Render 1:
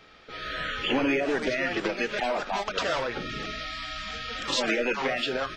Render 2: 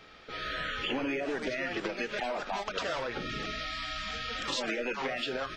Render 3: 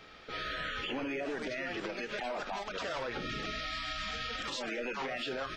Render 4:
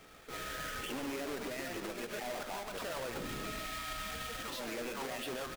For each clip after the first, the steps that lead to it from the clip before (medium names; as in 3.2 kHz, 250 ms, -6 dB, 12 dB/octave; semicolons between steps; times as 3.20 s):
compression 2.5:1, threshold -33 dBFS, peak gain reduction 8 dB
peak limiter -28.5 dBFS, peak gain reduction 8.5 dB
square wave that keeps the level; echo from a far wall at 24 m, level -9 dB; trim -7.5 dB